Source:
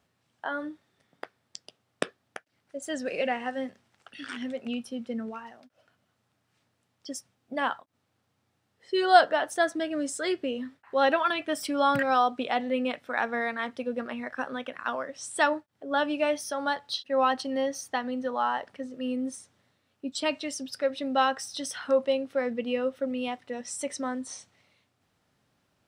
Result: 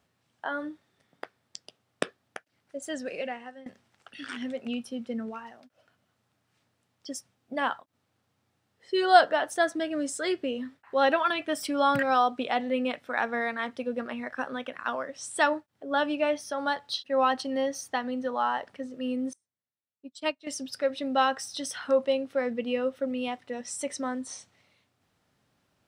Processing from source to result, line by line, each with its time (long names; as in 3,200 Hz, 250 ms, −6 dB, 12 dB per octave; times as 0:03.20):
0:02.76–0:03.66: fade out, to −19 dB
0:16.15–0:16.58: high-shelf EQ 6,600 Hz −9.5 dB
0:19.33–0:20.47: expander for the loud parts 2.5 to 1, over −45 dBFS